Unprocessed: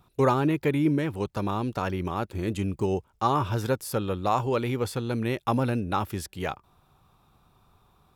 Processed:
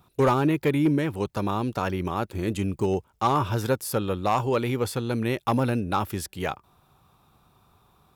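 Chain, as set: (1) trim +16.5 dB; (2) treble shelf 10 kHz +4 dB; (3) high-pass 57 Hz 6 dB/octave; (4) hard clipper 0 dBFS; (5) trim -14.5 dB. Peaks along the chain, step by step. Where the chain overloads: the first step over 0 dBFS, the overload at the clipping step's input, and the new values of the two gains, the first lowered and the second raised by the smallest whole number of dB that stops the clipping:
+6.0 dBFS, +6.5 dBFS, +7.0 dBFS, 0.0 dBFS, -14.5 dBFS; step 1, 7.0 dB; step 1 +9.5 dB, step 5 -7.5 dB

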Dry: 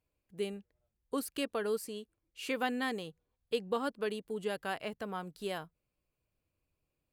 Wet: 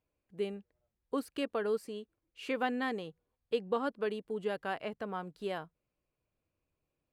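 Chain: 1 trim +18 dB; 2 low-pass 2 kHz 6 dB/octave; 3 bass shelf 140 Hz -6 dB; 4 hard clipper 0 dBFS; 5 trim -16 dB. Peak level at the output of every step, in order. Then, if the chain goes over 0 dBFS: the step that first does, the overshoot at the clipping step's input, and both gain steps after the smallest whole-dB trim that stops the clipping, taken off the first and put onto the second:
-1.0 dBFS, -2.5 dBFS, -3.5 dBFS, -3.5 dBFS, -19.5 dBFS; nothing clips

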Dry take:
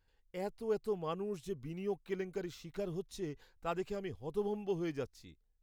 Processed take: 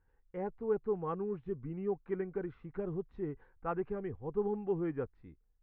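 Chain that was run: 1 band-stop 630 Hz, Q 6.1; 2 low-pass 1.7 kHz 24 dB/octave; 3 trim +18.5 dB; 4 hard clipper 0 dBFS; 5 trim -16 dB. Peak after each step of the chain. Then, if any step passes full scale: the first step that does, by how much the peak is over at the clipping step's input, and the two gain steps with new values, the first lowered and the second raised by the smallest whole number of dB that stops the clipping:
-23.0 dBFS, -23.5 dBFS, -5.0 dBFS, -5.0 dBFS, -21.0 dBFS; nothing clips

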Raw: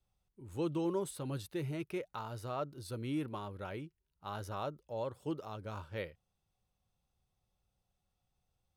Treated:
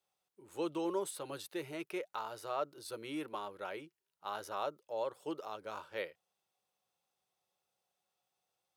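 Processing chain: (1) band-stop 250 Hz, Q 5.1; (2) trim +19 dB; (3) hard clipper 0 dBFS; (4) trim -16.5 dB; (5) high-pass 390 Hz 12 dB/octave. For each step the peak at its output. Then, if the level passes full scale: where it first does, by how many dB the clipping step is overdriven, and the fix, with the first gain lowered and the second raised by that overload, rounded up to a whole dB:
-25.0 dBFS, -6.0 dBFS, -6.0 dBFS, -22.5 dBFS, -23.5 dBFS; nothing clips

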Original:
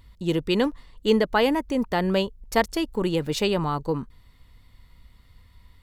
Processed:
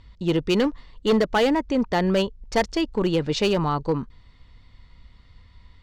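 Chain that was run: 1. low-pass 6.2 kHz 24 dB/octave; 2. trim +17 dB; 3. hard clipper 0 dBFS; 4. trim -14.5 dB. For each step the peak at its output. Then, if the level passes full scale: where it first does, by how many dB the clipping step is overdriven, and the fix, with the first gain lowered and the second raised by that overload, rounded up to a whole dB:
-7.5 dBFS, +9.5 dBFS, 0.0 dBFS, -14.5 dBFS; step 2, 9.5 dB; step 2 +7 dB, step 4 -4.5 dB

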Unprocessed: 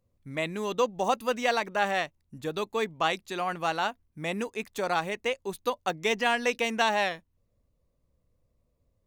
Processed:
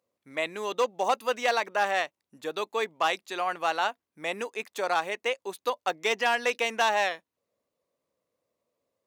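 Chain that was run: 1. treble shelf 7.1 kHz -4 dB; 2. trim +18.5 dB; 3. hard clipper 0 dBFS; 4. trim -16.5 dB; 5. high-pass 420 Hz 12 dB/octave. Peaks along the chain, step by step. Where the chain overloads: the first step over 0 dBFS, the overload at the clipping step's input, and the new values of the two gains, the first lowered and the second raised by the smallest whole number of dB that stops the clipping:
-11.0 dBFS, +7.5 dBFS, 0.0 dBFS, -16.5 dBFS, -11.5 dBFS; step 2, 7.5 dB; step 2 +10.5 dB, step 4 -8.5 dB

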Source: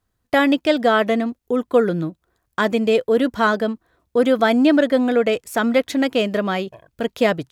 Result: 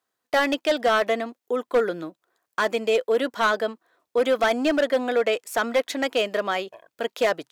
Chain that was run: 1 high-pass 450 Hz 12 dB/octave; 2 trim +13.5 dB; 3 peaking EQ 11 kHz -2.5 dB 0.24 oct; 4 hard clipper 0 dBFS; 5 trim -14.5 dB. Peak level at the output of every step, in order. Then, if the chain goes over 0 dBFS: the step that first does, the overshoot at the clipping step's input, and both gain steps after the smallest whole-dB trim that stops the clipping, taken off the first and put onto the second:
-4.5 dBFS, +9.0 dBFS, +9.0 dBFS, 0.0 dBFS, -14.5 dBFS; step 2, 9.0 dB; step 2 +4.5 dB, step 5 -5.5 dB

